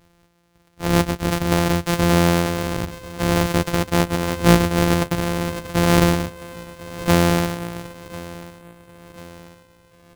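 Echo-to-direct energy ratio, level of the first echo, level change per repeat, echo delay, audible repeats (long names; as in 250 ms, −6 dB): −16.5 dB, −18.0 dB, −6.0 dB, 1,041 ms, 3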